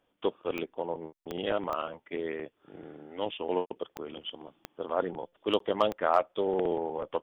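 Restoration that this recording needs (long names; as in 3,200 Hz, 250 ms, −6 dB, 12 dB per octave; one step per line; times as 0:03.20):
clipped peaks rebuilt −12 dBFS
click removal
repair the gap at 0:05.59, 13 ms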